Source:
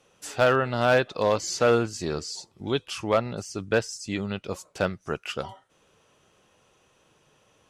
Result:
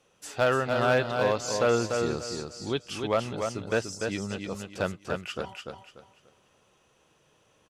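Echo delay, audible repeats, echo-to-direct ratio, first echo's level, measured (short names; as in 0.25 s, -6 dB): 0.293 s, 3, -4.5 dB, -5.0 dB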